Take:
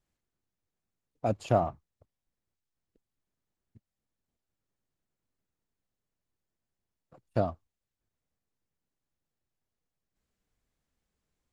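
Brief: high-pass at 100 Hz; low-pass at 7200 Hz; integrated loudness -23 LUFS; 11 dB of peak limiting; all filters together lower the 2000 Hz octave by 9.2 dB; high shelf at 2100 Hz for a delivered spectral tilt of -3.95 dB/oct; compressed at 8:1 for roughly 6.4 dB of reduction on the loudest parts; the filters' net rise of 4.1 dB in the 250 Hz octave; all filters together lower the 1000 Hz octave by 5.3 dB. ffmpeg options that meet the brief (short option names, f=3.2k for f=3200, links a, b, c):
-af "highpass=100,lowpass=7.2k,equalizer=f=250:t=o:g=6,equalizer=f=1k:t=o:g=-8,equalizer=f=2k:t=o:g=-6.5,highshelf=f=2.1k:g=-6,acompressor=threshold=-27dB:ratio=8,volume=20dB,alimiter=limit=-9dB:level=0:latency=1"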